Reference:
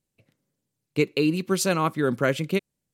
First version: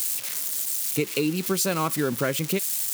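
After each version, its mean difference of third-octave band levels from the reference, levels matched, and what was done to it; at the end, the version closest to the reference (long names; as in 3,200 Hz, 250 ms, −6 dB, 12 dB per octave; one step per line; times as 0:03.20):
8.0 dB: spike at every zero crossing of −20 dBFS
downward compressor, threshold −22 dBFS, peak gain reduction 6.5 dB
level +1.5 dB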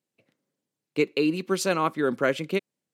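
2.5 dB: high-pass filter 230 Hz 12 dB per octave
high-shelf EQ 7,000 Hz −8.5 dB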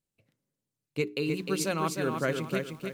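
5.0 dB: mains-hum notches 60/120/180/240/300/360/420 Hz
feedback echo at a low word length 306 ms, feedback 35%, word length 8 bits, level −5 dB
level −6.5 dB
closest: second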